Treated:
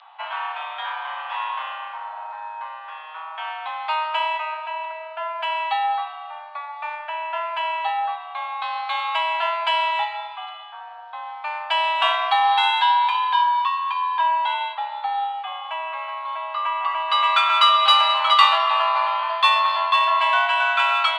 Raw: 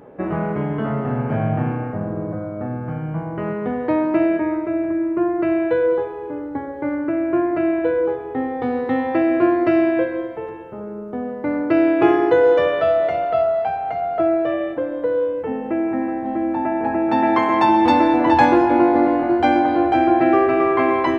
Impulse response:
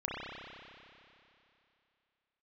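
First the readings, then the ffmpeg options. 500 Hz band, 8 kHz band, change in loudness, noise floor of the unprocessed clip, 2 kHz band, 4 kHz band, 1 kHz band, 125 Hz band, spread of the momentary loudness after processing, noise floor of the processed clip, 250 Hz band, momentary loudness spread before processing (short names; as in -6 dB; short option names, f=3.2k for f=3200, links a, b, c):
-16.0 dB, n/a, -2.0 dB, -31 dBFS, +3.5 dB, +17.0 dB, +2.0 dB, under -40 dB, 18 LU, -37 dBFS, under -40 dB, 12 LU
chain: -af "highpass=f=540:t=q:w=0.5412,highpass=f=540:t=q:w=1.307,lowpass=f=3.6k:t=q:w=0.5176,lowpass=f=3.6k:t=q:w=0.7071,lowpass=f=3.6k:t=q:w=1.932,afreqshift=310,aexciter=amount=5.8:drive=8.7:freq=3k"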